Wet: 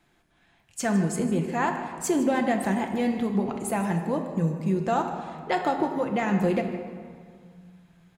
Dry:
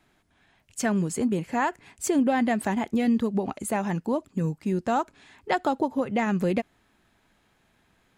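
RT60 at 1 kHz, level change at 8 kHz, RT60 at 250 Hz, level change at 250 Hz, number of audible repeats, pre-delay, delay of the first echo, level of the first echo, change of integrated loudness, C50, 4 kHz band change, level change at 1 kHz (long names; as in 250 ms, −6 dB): 2.0 s, −0.5 dB, 3.1 s, 0.0 dB, 1, 6 ms, 155 ms, −15.0 dB, 0.0 dB, 6.0 dB, 0.0 dB, +0.5 dB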